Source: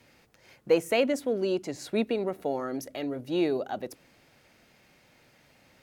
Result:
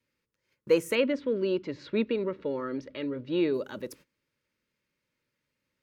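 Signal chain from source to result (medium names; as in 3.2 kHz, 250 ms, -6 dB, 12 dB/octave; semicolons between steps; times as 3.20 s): 0.95–3.54 s: low-pass 4 kHz 24 dB/octave; gate -51 dBFS, range -21 dB; Butterworth band-stop 730 Hz, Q 2.4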